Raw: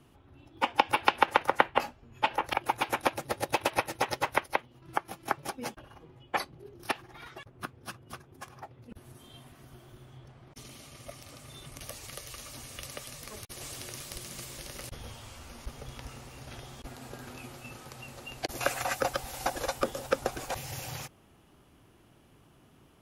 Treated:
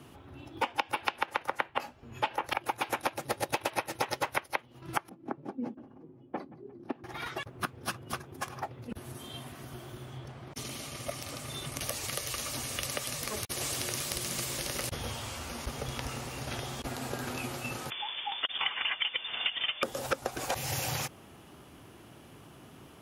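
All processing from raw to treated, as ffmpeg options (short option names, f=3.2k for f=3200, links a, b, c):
-filter_complex "[0:a]asettb=1/sr,asplit=3[a][b][c];[a]atrim=end=5.094[d];[b]atrim=start=5.09:end=7.04,asetpts=PTS-STARTPTS,afade=t=in:d=0.004:c=qsin,afade=t=out:st=1.946:d=0.004:c=qsin,bandpass=f=250:t=q:w=2.3,aecho=1:1:175|350|525|700:0.0891|0.0481|0.026|0.014,atrim=end_sample=85995[e];[c]atrim=start=7.036[f];[d][e]acrossfade=d=0.004:c1=hsin:c2=qsin[g];[g][f]acrossfade=d=0.004:c1=qsin:c2=hsin,asettb=1/sr,asplit=3[h][i][j];[h]atrim=end=17.904[k];[i]atrim=start=17.9:end=19.83,asetpts=PTS-STARTPTS,afade=t=in:d=0.004:c=qsin,afade=t=out:st=1.926:d=0.004:c=qsin,volume=20.5dB,asoftclip=hard,volume=-20.5dB,lowpass=f=3.1k:t=q:w=0.5098,lowpass=f=3.1k:t=q:w=0.6013,lowpass=f=3.1k:t=q:w=0.9,lowpass=f=3.1k:t=q:w=2.563,afreqshift=-3600[l];[j]atrim=start=19.826[m];[k][l]acrossfade=d=0.004:c1=hsin:c2=qsin[n];[n][m]acrossfade=d=0.004:c1=qsin:c2=hsin,highpass=60,lowshelf=f=160:g=-3,acompressor=threshold=-38dB:ratio=5,volume=9dB"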